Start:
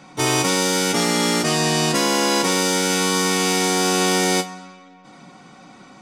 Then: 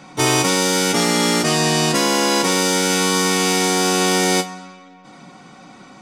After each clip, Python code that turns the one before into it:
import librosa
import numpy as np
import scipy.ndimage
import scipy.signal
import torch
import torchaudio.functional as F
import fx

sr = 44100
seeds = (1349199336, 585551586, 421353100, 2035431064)

y = fx.rider(x, sr, range_db=10, speed_s=0.5)
y = y * 10.0 ** (2.0 / 20.0)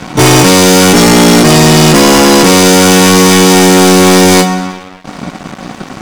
y = fx.low_shelf(x, sr, hz=490.0, db=8.5)
y = fx.leveller(y, sr, passes=5)
y = y * 10.0 ** (-1.5 / 20.0)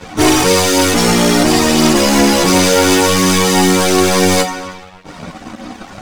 y = fx.chorus_voices(x, sr, voices=4, hz=0.47, base_ms=11, depth_ms=2.1, mix_pct=65)
y = y * 10.0 ** (-3.5 / 20.0)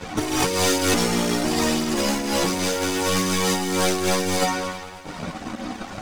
y = fx.over_compress(x, sr, threshold_db=-14.0, ratio=-0.5)
y = fx.echo_heads(y, sr, ms=107, heads='second and third', feedback_pct=47, wet_db=-19.5)
y = y * 10.0 ** (-6.5 / 20.0)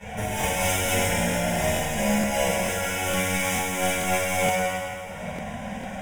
y = fx.fixed_phaser(x, sr, hz=1200.0, stages=6)
y = fx.rev_fdn(y, sr, rt60_s=1.9, lf_ratio=1.2, hf_ratio=0.85, size_ms=29.0, drr_db=-8.0)
y = fx.buffer_crackle(y, sr, first_s=0.39, period_s=0.45, block=1024, kind='repeat')
y = y * 10.0 ** (-6.5 / 20.0)